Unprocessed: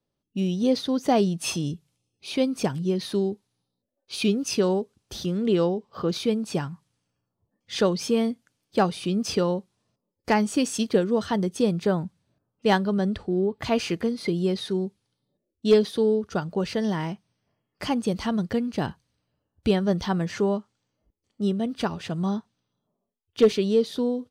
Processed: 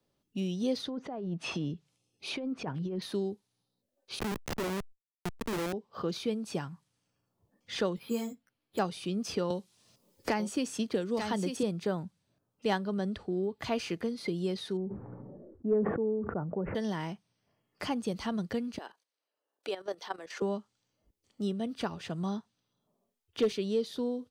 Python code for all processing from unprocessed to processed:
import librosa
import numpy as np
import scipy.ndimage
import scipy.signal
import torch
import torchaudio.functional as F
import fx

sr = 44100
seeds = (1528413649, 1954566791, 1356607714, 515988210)

y = fx.chain(x, sr, fx.env_lowpass_down(base_hz=1400.0, full_db=-20.5),
    fx.low_shelf(hz=170.0, db=-3.0),
    fx.over_compress(threshold_db=-28.0, ratio=-1.0), at=(0.8, 3.02))
y = fx.chain(y, sr, fx.highpass(hz=55.0, slope=24),
    fx.schmitt(flips_db=-22.0),
    fx.sustainer(db_per_s=130.0), at=(4.19, 5.73))
y = fx.chain(y, sr, fx.resample_bad(factor=6, down='filtered', up='hold'),
    fx.ensemble(), at=(7.96, 8.79))
y = fx.chain(y, sr, fx.echo_single(ms=891, db=-8.5),
    fx.band_squash(depth_pct=70), at=(9.5, 11.63))
y = fx.chain(y, sr, fx.gaussian_blur(sigma=8.2),
    fx.sustainer(db_per_s=39.0), at=(14.77, 16.75))
y = fx.chain(y, sr, fx.highpass(hz=390.0, slope=24),
    fx.level_steps(step_db=13), at=(18.78, 20.42))
y = fx.low_shelf(y, sr, hz=200.0, db=-3.5)
y = fx.band_squash(y, sr, depth_pct=40)
y = y * 10.0 ** (-7.0 / 20.0)